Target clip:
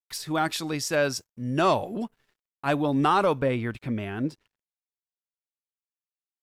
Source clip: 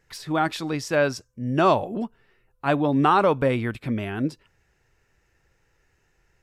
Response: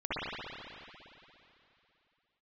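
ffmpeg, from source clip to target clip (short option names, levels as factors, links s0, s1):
-af "asetnsamples=n=441:p=0,asendcmd='3.39 highshelf g -2.5',highshelf=f=4600:g=11.5,agate=range=0.0224:threshold=0.00158:ratio=3:detection=peak,acontrast=63,aeval=exprs='sgn(val(0))*max(abs(val(0))-0.002,0)':c=same,volume=0.355"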